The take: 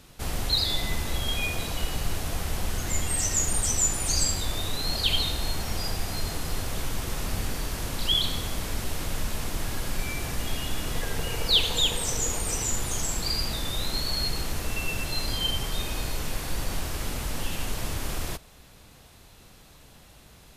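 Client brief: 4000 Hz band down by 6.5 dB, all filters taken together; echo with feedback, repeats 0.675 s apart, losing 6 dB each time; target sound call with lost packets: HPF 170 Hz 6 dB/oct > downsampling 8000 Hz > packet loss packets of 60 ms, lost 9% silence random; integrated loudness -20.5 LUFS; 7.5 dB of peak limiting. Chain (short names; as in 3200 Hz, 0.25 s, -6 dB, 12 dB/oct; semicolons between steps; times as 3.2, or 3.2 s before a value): bell 4000 Hz -8 dB; limiter -20 dBFS; HPF 170 Hz 6 dB/oct; feedback echo 0.675 s, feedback 50%, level -6 dB; downsampling 8000 Hz; packet loss packets of 60 ms, lost 9% silence random; gain +16 dB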